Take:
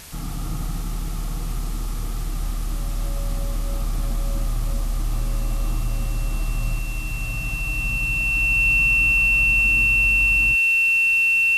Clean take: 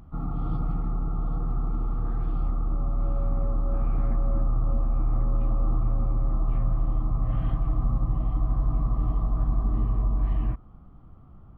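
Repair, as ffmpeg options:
-af "bandreject=f=2.7k:w=30,afwtdn=0.01,asetnsamples=n=441:p=0,asendcmd='6.79 volume volume 3dB',volume=0dB"

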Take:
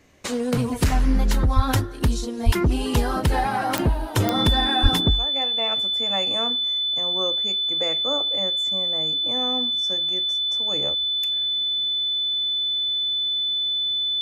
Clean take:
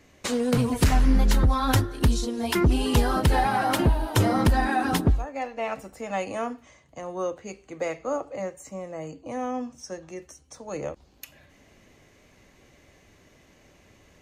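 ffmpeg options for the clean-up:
-filter_complex "[0:a]adeclick=t=4,bandreject=f=3.5k:w=30,asplit=3[a][b][c];[a]afade=t=out:st=1.55:d=0.02[d];[b]highpass=f=140:w=0.5412,highpass=f=140:w=1.3066,afade=t=in:st=1.55:d=0.02,afade=t=out:st=1.67:d=0.02[e];[c]afade=t=in:st=1.67:d=0.02[f];[d][e][f]amix=inputs=3:normalize=0,asplit=3[g][h][i];[g]afade=t=out:st=2.45:d=0.02[j];[h]highpass=f=140:w=0.5412,highpass=f=140:w=1.3066,afade=t=in:st=2.45:d=0.02,afade=t=out:st=2.57:d=0.02[k];[i]afade=t=in:st=2.57:d=0.02[l];[j][k][l]amix=inputs=3:normalize=0,asplit=3[m][n][o];[m]afade=t=out:st=4.82:d=0.02[p];[n]highpass=f=140:w=0.5412,highpass=f=140:w=1.3066,afade=t=in:st=4.82:d=0.02,afade=t=out:st=4.94:d=0.02[q];[o]afade=t=in:st=4.94:d=0.02[r];[p][q][r]amix=inputs=3:normalize=0"

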